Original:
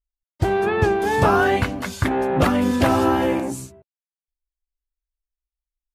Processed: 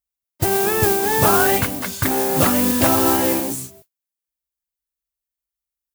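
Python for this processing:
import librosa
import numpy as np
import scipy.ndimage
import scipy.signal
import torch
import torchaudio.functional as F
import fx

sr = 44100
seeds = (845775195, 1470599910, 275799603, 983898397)

y = scipy.signal.sosfilt(scipy.signal.butter(2, 84.0, 'highpass', fs=sr, output='sos'), x)
y = fx.mod_noise(y, sr, seeds[0], snr_db=12)
y = fx.high_shelf(y, sr, hz=7900.0, db=11.5)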